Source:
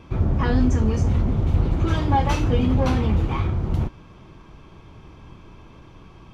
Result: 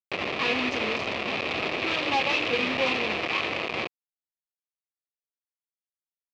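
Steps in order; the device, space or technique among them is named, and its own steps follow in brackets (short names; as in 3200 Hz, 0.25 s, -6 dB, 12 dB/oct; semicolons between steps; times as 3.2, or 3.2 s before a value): hand-held game console (bit-crush 4-bit; speaker cabinet 460–4200 Hz, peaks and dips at 880 Hz -7 dB, 1500 Hz -9 dB, 2500 Hz +10 dB)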